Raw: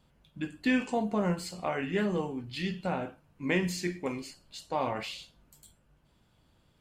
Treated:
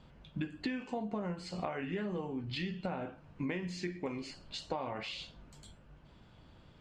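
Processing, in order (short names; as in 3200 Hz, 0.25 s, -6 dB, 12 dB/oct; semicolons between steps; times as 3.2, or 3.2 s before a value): compressor 16:1, threshold -42 dBFS, peak gain reduction 21 dB; air absorption 120 m; gain +8.5 dB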